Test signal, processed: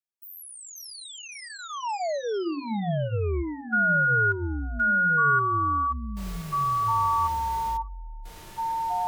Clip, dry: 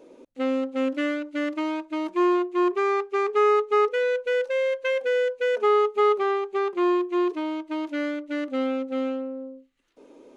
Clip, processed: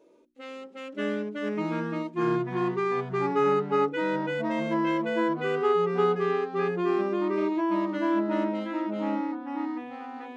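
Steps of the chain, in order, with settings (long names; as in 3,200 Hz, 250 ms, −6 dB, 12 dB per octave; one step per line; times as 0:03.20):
mains-hum notches 60/120/180/240/300/360 Hz
harmonic and percussive parts rebalanced percussive −15 dB
delay with pitch and tempo change per echo 482 ms, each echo −4 semitones, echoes 3
notch comb filter 260 Hz
level −4 dB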